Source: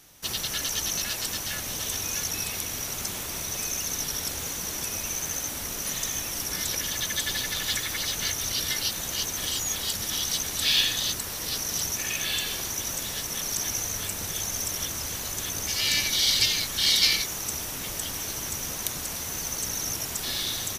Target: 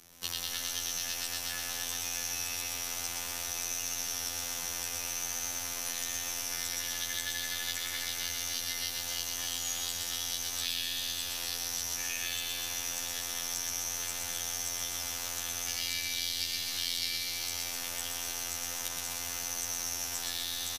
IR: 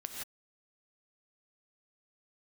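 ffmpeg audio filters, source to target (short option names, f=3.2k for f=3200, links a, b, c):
-filter_complex "[0:a]afftfilt=real='hypot(re,im)*cos(PI*b)':imag='0':win_size=2048:overlap=0.75,aecho=1:1:120|252|397.2|556.9|732.6:0.631|0.398|0.251|0.158|0.1,acrossover=split=120|540|7400[a][b][c][d];[a]acompressor=threshold=-52dB:ratio=4[e];[b]acompressor=threshold=-58dB:ratio=4[f];[c]acompressor=threshold=-32dB:ratio=4[g];[d]acompressor=threshold=-37dB:ratio=4[h];[e][f][g][h]amix=inputs=4:normalize=0"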